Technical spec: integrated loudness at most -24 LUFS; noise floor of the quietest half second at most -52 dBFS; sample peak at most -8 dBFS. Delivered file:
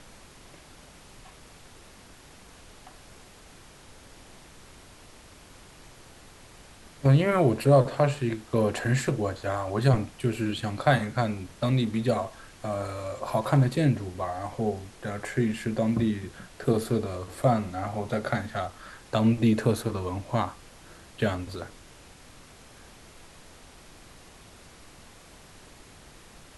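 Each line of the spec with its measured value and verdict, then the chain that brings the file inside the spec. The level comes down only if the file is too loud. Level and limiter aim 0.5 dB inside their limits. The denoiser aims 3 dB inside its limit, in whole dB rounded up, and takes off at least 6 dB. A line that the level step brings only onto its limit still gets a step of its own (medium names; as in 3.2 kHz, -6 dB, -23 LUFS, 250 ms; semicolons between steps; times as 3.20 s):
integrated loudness -27.0 LUFS: pass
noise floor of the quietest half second -51 dBFS: fail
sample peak -7.0 dBFS: fail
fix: noise reduction 6 dB, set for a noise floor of -51 dBFS; peak limiter -8.5 dBFS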